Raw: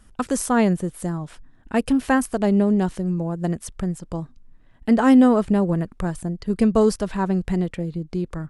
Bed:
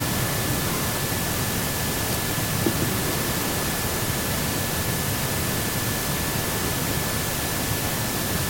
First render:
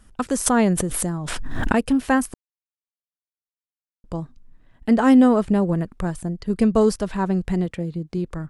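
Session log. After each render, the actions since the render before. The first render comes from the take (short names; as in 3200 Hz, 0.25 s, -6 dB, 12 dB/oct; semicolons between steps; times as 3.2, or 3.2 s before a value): 0.46–1.79 backwards sustainer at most 23 dB/s; 2.34–4.04 mute; 7.66–8.18 HPF 45 Hz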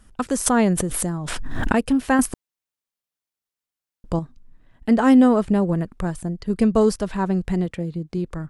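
2.19–4.19 gain +6 dB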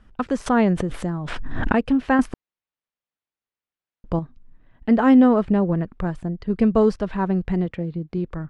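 LPF 3100 Hz 12 dB/oct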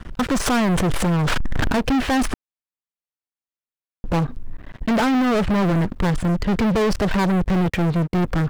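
limiter -16 dBFS, peak gain reduction 11.5 dB; sample leveller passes 5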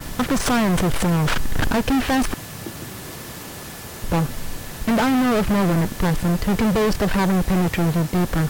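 add bed -10 dB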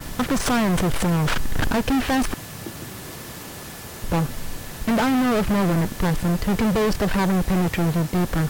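gain -1.5 dB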